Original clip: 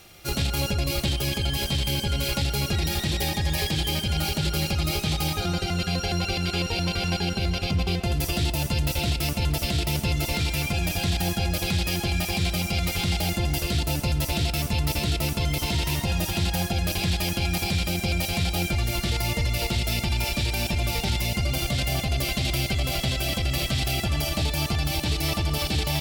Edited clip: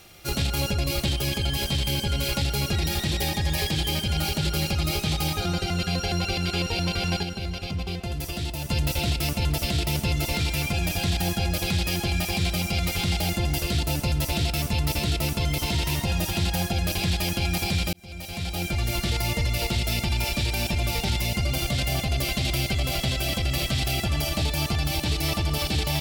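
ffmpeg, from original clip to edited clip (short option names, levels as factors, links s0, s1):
-filter_complex "[0:a]asplit=4[s0][s1][s2][s3];[s0]atrim=end=7.232[s4];[s1]atrim=start=7.228:end=8.692,asetpts=PTS-STARTPTS,volume=0.531[s5];[s2]atrim=start=8.688:end=17.93,asetpts=PTS-STARTPTS,afade=t=out:st=9.238:d=0.004:c=hsin[s6];[s3]atrim=start=17.93,asetpts=PTS-STARTPTS,afade=t=in:d=0.97[s7];[s4][s5]acrossfade=d=0.004:c1=hsin:c2=hsin[s8];[s6][s7]concat=n=2:v=0:a=1[s9];[s8][s9]acrossfade=d=0.004:c1=hsin:c2=hsin"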